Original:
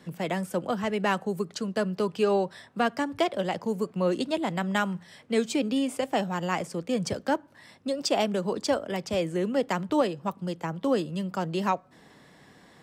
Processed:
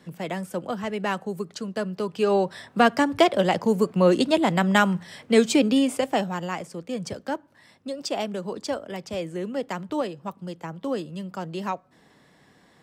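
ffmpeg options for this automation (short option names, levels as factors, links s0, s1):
-af "volume=2.37,afade=t=in:st=2.09:d=0.69:silence=0.375837,afade=t=out:st=5.58:d=0.99:silence=0.298538"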